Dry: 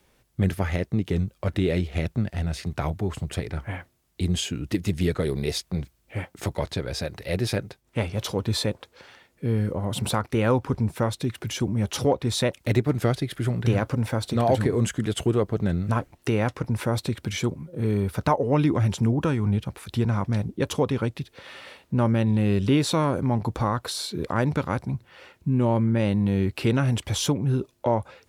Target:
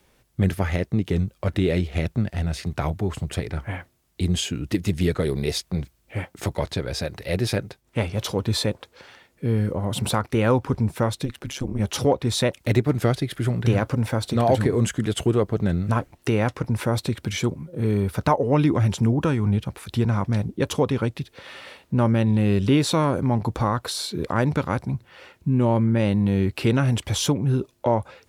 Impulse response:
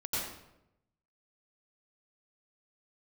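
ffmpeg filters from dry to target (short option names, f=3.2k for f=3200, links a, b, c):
-filter_complex "[0:a]asplit=3[a][b][c];[a]afade=t=out:st=11.24:d=0.02[d];[b]tremolo=f=140:d=0.947,afade=t=in:st=11.24:d=0.02,afade=t=out:st=11.79:d=0.02[e];[c]afade=t=in:st=11.79:d=0.02[f];[d][e][f]amix=inputs=3:normalize=0,volume=2dB"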